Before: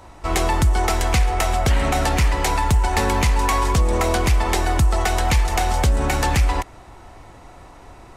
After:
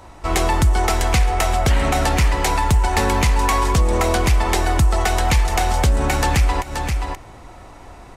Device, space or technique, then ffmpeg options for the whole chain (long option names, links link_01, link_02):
ducked delay: -filter_complex "[0:a]asplit=3[link_01][link_02][link_03];[link_02]adelay=528,volume=-5.5dB[link_04];[link_03]apad=whole_len=383571[link_05];[link_04][link_05]sidechaincompress=threshold=-35dB:ratio=8:attack=5.3:release=123[link_06];[link_01][link_06]amix=inputs=2:normalize=0,volume=1.5dB"